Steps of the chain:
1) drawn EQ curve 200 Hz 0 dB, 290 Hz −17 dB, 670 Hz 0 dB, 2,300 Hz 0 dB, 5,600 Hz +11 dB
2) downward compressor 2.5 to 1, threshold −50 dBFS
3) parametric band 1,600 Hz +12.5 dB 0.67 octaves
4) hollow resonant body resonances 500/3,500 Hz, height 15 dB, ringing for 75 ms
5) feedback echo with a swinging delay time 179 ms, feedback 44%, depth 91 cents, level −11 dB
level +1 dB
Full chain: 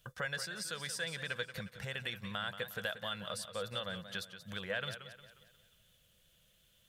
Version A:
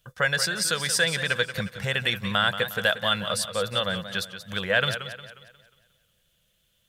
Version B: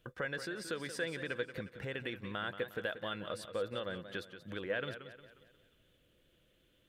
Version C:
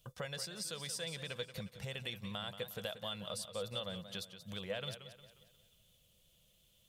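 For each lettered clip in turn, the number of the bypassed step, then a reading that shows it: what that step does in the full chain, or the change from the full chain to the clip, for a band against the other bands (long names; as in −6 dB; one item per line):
2, average gain reduction 13.0 dB
1, 8 kHz band −7.0 dB
3, 2 kHz band −9.0 dB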